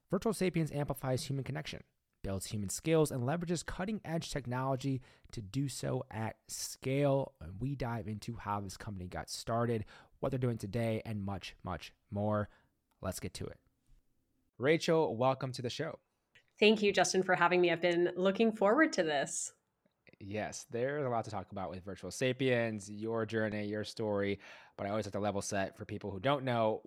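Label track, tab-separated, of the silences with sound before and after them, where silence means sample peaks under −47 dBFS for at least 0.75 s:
13.530000	14.590000	silence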